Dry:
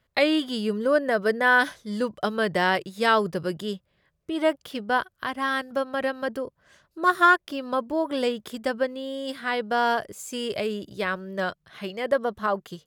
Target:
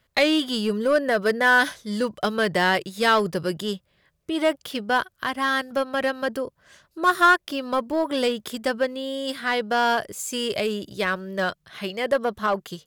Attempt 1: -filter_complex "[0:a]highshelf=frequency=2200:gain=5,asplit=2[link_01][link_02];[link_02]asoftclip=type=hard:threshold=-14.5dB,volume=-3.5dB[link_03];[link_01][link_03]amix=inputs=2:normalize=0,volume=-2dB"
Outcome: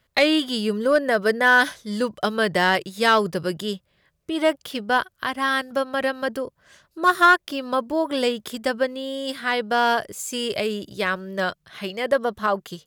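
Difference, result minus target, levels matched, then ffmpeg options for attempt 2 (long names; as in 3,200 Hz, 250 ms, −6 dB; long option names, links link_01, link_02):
hard clipping: distortion −7 dB
-filter_complex "[0:a]highshelf=frequency=2200:gain=5,asplit=2[link_01][link_02];[link_02]asoftclip=type=hard:threshold=-22dB,volume=-3.5dB[link_03];[link_01][link_03]amix=inputs=2:normalize=0,volume=-2dB"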